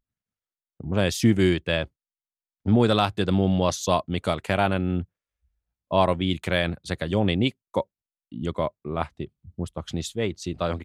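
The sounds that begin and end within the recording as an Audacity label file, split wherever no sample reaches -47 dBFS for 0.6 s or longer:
0.800000	1.870000	sound
2.650000	5.050000	sound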